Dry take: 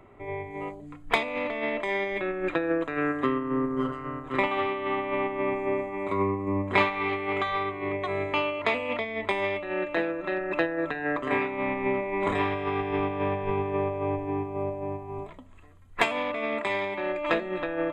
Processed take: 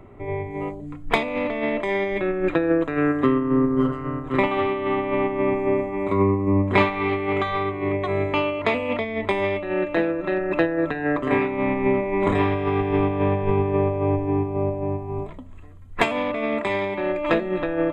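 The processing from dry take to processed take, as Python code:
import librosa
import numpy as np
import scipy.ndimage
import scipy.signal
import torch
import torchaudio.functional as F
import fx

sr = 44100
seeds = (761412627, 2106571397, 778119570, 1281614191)

y = fx.low_shelf(x, sr, hz=440.0, db=9.5)
y = y * 10.0 ** (1.5 / 20.0)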